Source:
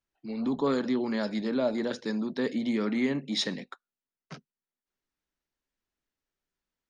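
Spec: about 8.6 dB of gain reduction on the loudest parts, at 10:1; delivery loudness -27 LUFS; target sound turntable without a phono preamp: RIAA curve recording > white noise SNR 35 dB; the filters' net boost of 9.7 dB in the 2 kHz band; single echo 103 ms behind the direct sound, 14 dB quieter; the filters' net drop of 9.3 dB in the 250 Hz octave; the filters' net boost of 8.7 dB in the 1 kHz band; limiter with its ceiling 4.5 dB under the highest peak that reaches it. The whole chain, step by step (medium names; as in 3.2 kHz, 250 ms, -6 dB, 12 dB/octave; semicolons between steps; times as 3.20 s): peaking EQ 250 Hz -3.5 dB; peaking EQ 1 kHz +9 dB; peaking EQ 2 kHz +6 dB; compression 10:1, threshold -28 dBFS; peak limiter -24 dBFS; RIAA curve recording; delay 103 ms -14 dB; white noise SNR 35 dB; trim +8 dB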